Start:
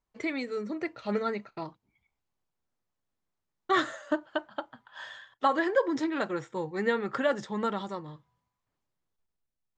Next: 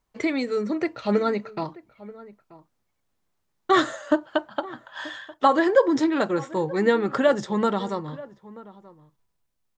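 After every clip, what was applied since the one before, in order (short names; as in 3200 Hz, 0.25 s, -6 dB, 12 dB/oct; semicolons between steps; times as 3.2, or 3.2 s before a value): dynamic EQ 2000 Hz, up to -5 dB, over -42 dBFS, Q 0.85; outdoor echo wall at 160 m, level -19 dB; gain +8.5 dB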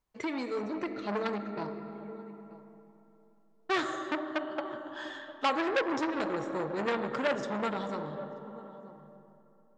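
on a send at -7 dB: reverb RT60 3.6 s, pre-delay 10 ms; on the sum: core saturation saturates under 1900 Hz; gain -7 dB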